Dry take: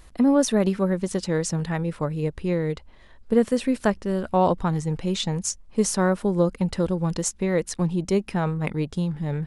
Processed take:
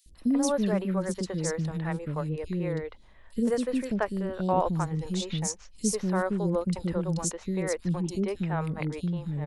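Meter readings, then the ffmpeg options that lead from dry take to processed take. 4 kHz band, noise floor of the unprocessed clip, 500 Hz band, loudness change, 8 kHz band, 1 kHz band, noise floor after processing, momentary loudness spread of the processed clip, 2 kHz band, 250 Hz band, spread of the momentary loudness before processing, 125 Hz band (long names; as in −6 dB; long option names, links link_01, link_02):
−6.0 dB, −50 dBFS, −6.0 dB, −5.0 dB, −4.5 dB, −4.5 dB, −52 dBFS, 6 LU, −5.0 dB, −5.0 dB, 6 LU, −4.5 dB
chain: -filter_complex "[0:a]acrossover=split=380|3300[link_01][link_02][link_03];[link_01]adelay=60[link_04];[link_02]adelay=150[link_05];[link_04][link_05][link_03]amix=inputs=3:normalize=0,volume=-4dB"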